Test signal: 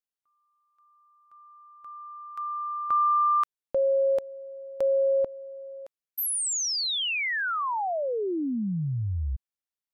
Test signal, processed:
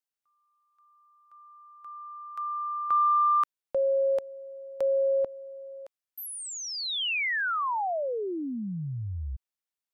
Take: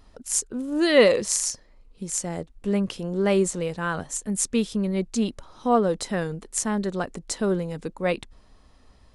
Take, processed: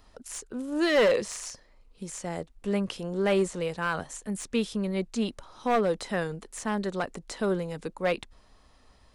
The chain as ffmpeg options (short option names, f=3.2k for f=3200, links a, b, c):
-filter_complex "[0:a]acrossover=split=490[a][b];[b]acontrast=25[c];[a][c]amix=inputs=2:normalize=0,asoftclip=type=hard:threshold=-13dB,acrossover=split=3500[d][e];[e]acompressor=threshold=-34dB:ratio=4:attack=1:release=60[f];[d][f]amix=inputs=2:normalize=0,volume=-5dB"